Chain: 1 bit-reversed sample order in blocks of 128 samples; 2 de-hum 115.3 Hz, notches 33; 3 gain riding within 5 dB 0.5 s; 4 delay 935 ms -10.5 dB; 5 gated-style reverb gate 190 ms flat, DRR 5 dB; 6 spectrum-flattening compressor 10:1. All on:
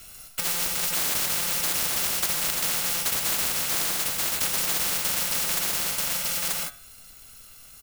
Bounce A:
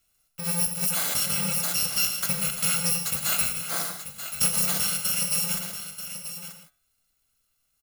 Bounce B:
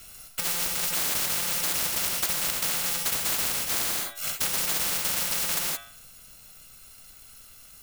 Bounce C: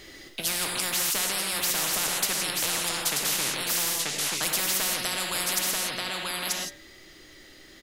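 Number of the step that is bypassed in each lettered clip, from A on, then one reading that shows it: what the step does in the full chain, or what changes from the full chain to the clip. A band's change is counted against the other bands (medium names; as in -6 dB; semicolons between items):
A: 6, 125 Hz band +8.5 dB; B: 4, momentary loudness spread change +2 LU; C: 1, 125 Hz band -2.0 dB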